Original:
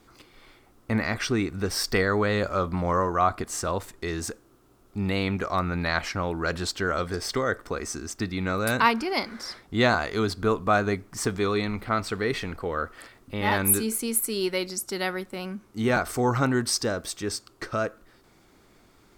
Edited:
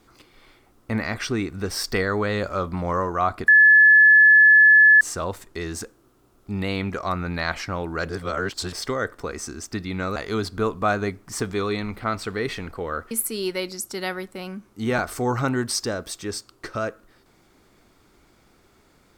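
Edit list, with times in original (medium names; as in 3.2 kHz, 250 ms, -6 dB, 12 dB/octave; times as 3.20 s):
3.48 s: add tone 1.72 kHz -9 dBFS 1.53 s
6.56–7.20 s: reverse
8.63–10.01 s: delete
12.96–14.09 s: delete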